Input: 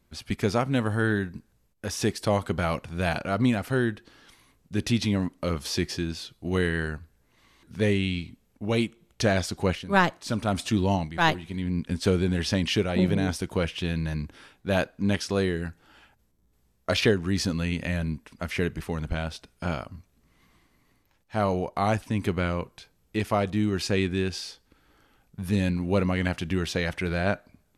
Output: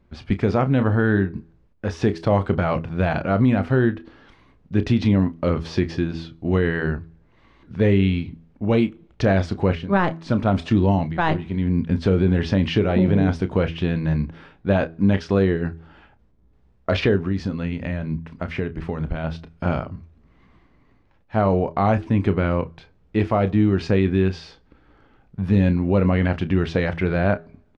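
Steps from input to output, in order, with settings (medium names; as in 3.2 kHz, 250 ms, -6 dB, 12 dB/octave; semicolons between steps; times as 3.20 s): de-hum 82.16 Hz, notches 5; 17.16–19.24 s: compression 3:1, threshold -31 dBFS, peak gain reduction 8 dB; tape spacing loss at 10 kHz 33 dB; doubling 31 ms -12.5 dB; loudness maximiser +17 dB; trim -8 dB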